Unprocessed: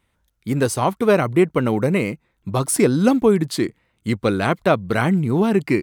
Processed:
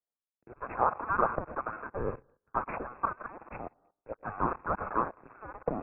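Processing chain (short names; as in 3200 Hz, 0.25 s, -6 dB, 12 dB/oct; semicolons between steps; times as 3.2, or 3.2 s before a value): minimum comb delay 0.51 ms; plate-style reverb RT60 0.75 s, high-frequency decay 0.7×, pre-delay 90 ms, DRR 15.5 dB; limiter -10.5 dBFS, peak gain reduction 7.5 dB; level quantiser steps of 16 dB; steep high-pass 1100 Hz 48 dB/oct; tilt +3 dB/oct; sample leveller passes 2; 0.8–3.24 dynamic EQ 1400 Hz, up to +7 dB, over -45 dBFS, Q 4.1; inverted band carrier 2600 Hz; three-band expander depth 40%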